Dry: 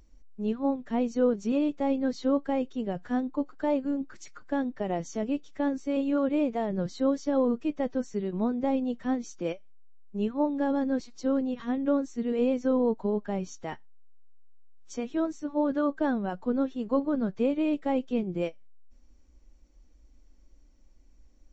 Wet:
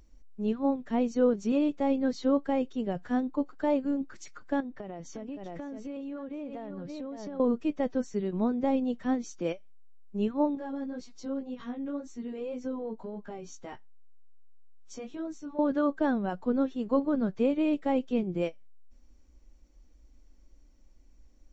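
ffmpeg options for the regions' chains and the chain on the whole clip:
-filter_complex "[0:a]asettb=1/sr,asplit=3[a][b][c];[a]atrim=end=4.604[d];[b]atrim=start=4.6:end=7.4,asetpts=PTS-STARTPTS,afade=t=in:d=0.004:c=qsin,afade=t=out:st=2.796:d=0.004:c=qsin,lowpass=f=4k:p=1,aecho=1:1:563:0.355,atrim=end_sample=123480,acompressor=threshold=-35dB:ratio=10:attack=3.2:release=140:knee=1:detection=peak[e];[c]atrim=start=7.396[f];[d][e]acrossfade=d=0.004:c1=hsin:c2=qsin[g];[g][f]acrossfade=d=0.004:c1=qsin:c2=hsin,asettb=1/sr,asplit=3[h][i][j];[h]atrim=end=10.554[k];[i]atrim=start=10.55:end=15.59,asetpts=PTS-STARTPTS,afade=t=in:d=0.004:c=qsin,afade=t=out:st=5.036:d=0.004:c=qsin,bandreject=f=1.8k:w=20,acompressor=threshold=-34dB:ratio=2:attack=3.2:release=140:knee=1:detection=peak,flanger=delay=15.5:depth=3:speed=1.9[l];[j]atrim=start=15.586[m];[k][l]acrossfade=d=0.004:c1=hsin:c2=qsin[n];[n][m]acrossfade=d=0.004:c1=qsin:c2=hsin"

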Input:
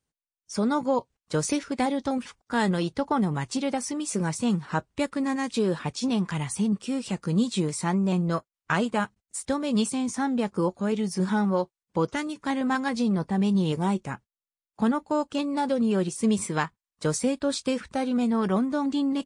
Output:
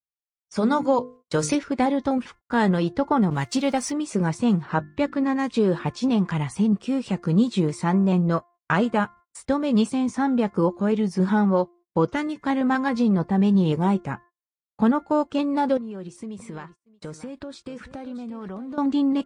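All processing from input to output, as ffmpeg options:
-filter_complex "[0:a]asettb=1/sr,asplit=3[a][b][c];[a]atrim=end=0.564[d];[b]atrim=start=0.56:end=1.55,asetpts=PTS-STARTPTS,afade=t=in:d=0.004:c=qsin,afade=t=out:st=0.986:d=0.004:c=qsin,highshelf=f=3k:g=8.5,bandreject=f=50:t=h:w=6,bandreject=f=100:t=h:w=6,bandreject=f=150:t=h:w=6,bandreject=f=200:t=h:w=6,bandreject=f=250:t=h:w=6,bandreject=f=300:t=h:w=6,bandreject=f=350:t=h:w=6,bandreject=f=400:t=h:w=6,bandreject=f=450:t=h:w=6,bandreject=f=500:t=h:w=6[e];[c]atrim=start=1.546[f];[d][e]acrossfade=d=0.004:c1=hsin:c2=qsin[g];[g][f]acrossfade=d=0.004:c1=qsin:c2=hsin,asettb=1/sr,asplit=3[h][i][j];[h]atrim=end=3.304[k];[i]atrim=start=3.3:end=3.92,asetpts=PTS-STARTPTS,afade=t=in:d=0.004:c=qsin,afade=t=out:st=0.616:d=0.004:c=qsin,aeval=exprs='val(0)+0.5*0.00841*sgn(val(0))':c=same,highshelf=f=2.4k:g=9,agate=range=-33dB:threshold=-26dB:ratio=3:release=100:detection=peak[l];[j]atrim=start=3.916[m];[k][l]acrossfade=d=0.004:c1=hsin:c2=qsin[n];[n][m]acrossfade=d=0.004:c1=qsin:c2=hsin,asettb=1/sr,asplit=3[o][p][q];[o]atrim=end=4.634[r];[p]atrim=start=4.63:end=5.39,asetpts=PTS-STARTPTS,afade=t=in:d=0.004:c=qsin,afade=t=out:st=0.756:d=0.004:c=qsin,lowpass=5.9k,bandreject=f=50:t=h:w=6,bandreject=f=100:t=h:w=6,bandreject=f=150:t=h:w=6,bandreject=f=200:t=h:w=6,bandreject=f=250:t=h:w=6,bandreject=f=300:t=h:w=6[s];[q]atrim=start=5.386[t];[r][s]acrossfade=d=0.004:c1=hsin:c2=qsin[u];[u][t]acrossfade=d=0.004:c1=qsin:c2=hsin,asettb=1/sr,asplit=3[v][w][x];[v]atrim=end=15.774[y];[w]atrim=start=15.77:end=18.78,asetpts=PTS-STARTPTS,afade=t=in:d=0.004:c=qsin,afade=t=out:st=3.006:d=0.004:c=qsin,acompressor=threshold=-37dB:ratio=6:attack=3.2:release=140:knee=1:detection=peak,aecho=1:1:628:0.2,atrim=end_sample=132741[z];[x]atrim=start=18.776[aa];[y][z]acrossfade=d=0.004:c1=hsin:c2=qsin[ab];[ab][aa]acrossfade=d=0.004:c1=qsin:c2=hsin,aemphasis=mode=reproduction:type=75kf,bandreject=f=348.6:t=h:w=4,bandreject=f=697.2:t=h:w=4,bandreject=f=1.0458k:t=h:w=4,bandreject=f=1.3944k:t=h:w=4,bandreject=f=1.743k:t=h:w=4,bandreject=f=2.0916k:t=h:w=4,agate=range=-30dB:threshold=-50dB:ratio=16:detection=peak,volume=4.5dB"

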